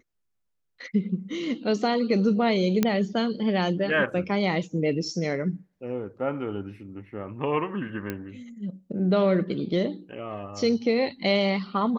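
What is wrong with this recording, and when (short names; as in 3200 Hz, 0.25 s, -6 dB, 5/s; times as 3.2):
2.83 pop -8 dBFS
8.1 pop -17 dBFS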